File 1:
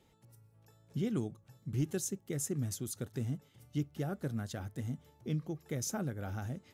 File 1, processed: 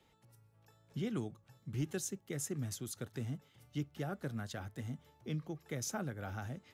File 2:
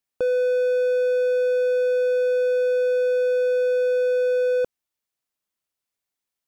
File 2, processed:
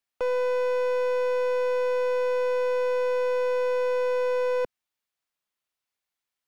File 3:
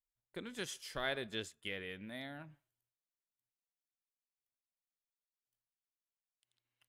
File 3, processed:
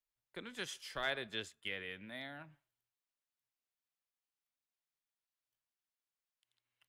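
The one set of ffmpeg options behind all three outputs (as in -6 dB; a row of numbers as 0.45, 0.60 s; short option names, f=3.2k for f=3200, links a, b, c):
-filter_complex "[0:a]acrossover=split=180|680|4700[a][b][c][d];[c]acontrast=43[e];[a][b][e][d]amix=inputs=4:normalize=0,aeval=exprs='clip(val(0),-1,0.0708)':c=same,volume=-4dB"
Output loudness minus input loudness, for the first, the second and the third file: -3.5, -4.5, +0.5 LU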